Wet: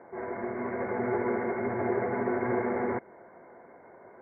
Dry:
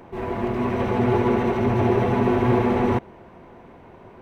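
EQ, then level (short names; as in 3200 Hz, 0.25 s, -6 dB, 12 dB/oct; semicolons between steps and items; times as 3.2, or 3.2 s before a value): HPF 470 Hz 6 dB/oct; dynamic EQ 750 Hz, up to -4 dB, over -34 dBFS, Q 0.82; rippled Chebyshev low-pass 2200 Hz, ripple 6 dB; 0.0 dB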